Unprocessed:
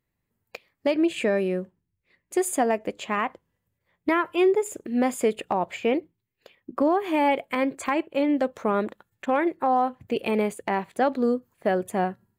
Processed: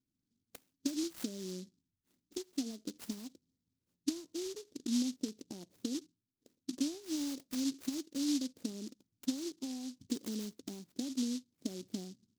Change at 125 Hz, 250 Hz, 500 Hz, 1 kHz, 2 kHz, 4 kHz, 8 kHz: under -10 dB, -10.0 dB, -24.0 dB, -36.0 dB, -26.5 dB, -4.0 dB, -5.0 dB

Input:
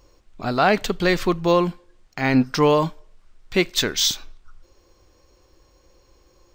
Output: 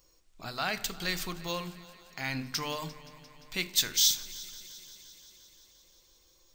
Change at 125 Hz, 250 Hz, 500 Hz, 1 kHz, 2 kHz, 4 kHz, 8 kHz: -15.5, -19.5, -21.0, -16.0, -10.5, -5.0, -1.5 dB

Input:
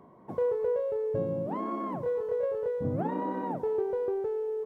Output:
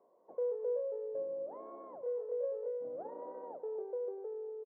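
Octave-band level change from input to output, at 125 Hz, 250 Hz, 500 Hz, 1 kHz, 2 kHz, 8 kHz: under -35 dB, -21.5 dB, -8.0 dB, -15.0 dB, under -20 dB, n/a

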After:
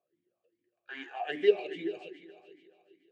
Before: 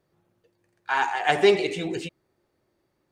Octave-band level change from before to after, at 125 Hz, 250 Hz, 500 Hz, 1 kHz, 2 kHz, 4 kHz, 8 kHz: under -20 dB, -9.0 dB, -6.0 dB, -16.0 dB, -14.0 dB, -12.5 dB, under -25 dB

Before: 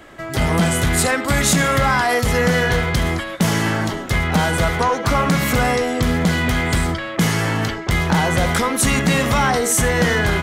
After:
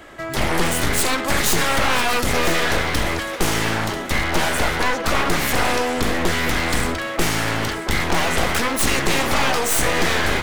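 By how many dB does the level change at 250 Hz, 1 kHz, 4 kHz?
-5.0, -1.5, +1.5 dB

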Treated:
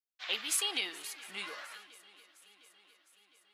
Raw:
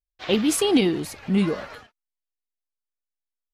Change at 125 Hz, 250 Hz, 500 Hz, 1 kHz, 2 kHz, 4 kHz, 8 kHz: under -35 dB, -32.5 dB, -25.0 dB, -12.5 dB, -5.0 dB, -5.0 dB, -5.0 dB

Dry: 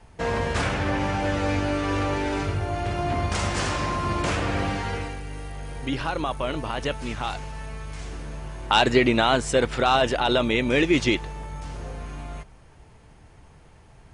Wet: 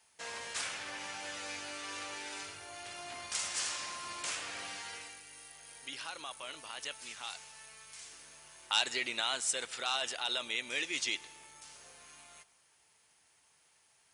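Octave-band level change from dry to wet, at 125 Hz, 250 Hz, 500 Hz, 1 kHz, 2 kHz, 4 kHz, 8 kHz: -36.0, -27.5, -22.5, -17.5, -11.0, -6.0, 0.0 dB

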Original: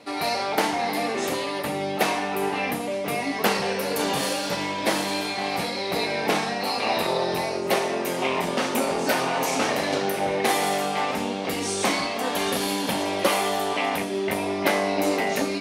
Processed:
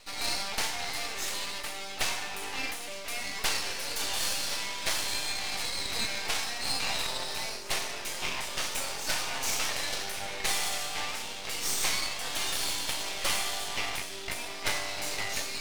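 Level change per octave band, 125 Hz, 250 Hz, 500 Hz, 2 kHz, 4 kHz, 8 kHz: -12.0, -19.5, -17.5, -6.0, -1.5, +0.5 dB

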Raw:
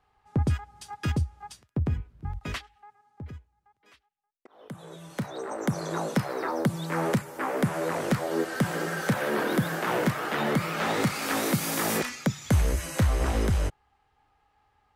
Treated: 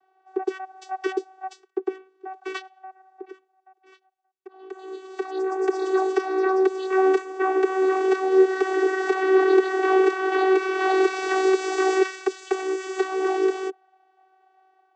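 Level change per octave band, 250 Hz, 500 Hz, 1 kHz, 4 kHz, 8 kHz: +4.0 dB, +11.5 dB, +6.5 dB, -1.5 dB, n/a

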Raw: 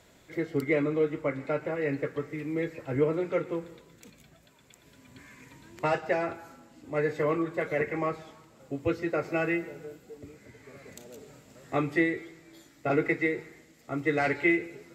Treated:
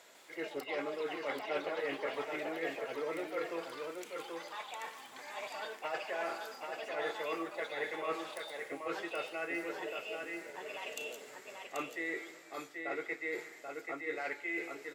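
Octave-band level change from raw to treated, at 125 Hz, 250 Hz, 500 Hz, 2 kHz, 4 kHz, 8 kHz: -25.5 dB, -14.0 dB, -9.0 dB, -6.0 dB, +4.0 dB, n/a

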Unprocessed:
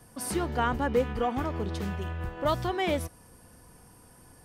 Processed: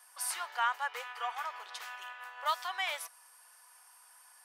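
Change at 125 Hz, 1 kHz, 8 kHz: under -40 dB, -3.5 dB, 0.0 dB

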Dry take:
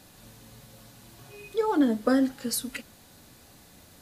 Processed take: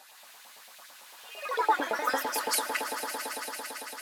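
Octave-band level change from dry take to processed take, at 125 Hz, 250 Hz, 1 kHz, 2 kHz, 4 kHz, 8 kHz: under -15 dB, -18.0 dB, +6.5 dB, +7.5 dB, +4.0 dB, +3.0 dB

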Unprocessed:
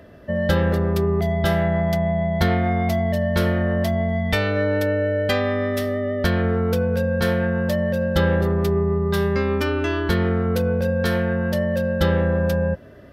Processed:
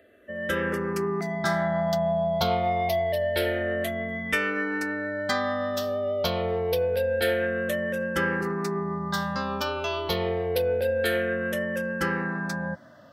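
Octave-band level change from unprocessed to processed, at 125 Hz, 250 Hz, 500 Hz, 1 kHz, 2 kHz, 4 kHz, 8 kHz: -13.0, -9.0, -4.5, -1.0, -1.0, -1.5, -1.0 dB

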